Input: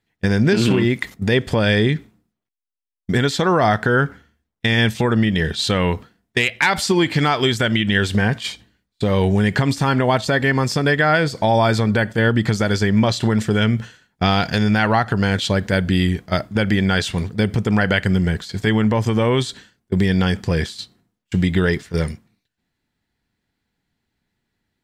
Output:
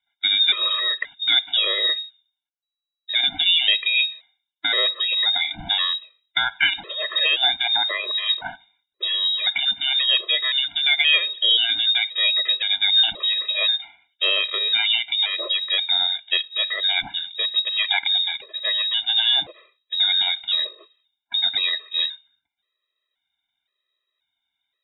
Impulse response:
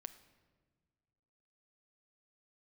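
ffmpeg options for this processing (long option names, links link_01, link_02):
-af "bandreject=frequency=50:width_type=h:width=6,bandreject=frequency=100:width_type=h:width=6,bandreject=frequency=150:width_type=h:width=6,lowpass=frequency=3300:width_type=q:width=0.5098,lowpass=frequency=3300:width_type=q:width=0.6013,lowpass=frequency=3300:width_type=q:width=0.9,lowpass=frequency=3300:width_type=q:width=2.563,afreqshift=-3900,afftfilt=real='re*gt(sin(2*PI*0.95*pts/sr)*(1-2*mod(floor(b*sr/1024/340),2)),0)':imag='im*gt(sin(2*PI*0.95*pts/sr)*(1-2*mod(floor(b*sr/1024/340),2)),0)':win_size=1024:overlap=0.75"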